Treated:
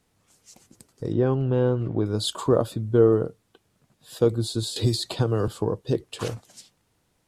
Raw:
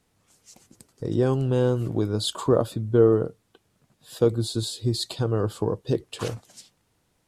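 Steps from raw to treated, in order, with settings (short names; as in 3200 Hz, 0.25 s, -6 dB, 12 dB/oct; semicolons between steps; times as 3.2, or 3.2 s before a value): 1.12–2.06 LPF 2500 Hz 12 dB/oct; 4.76–5.48 three-band squash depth 100%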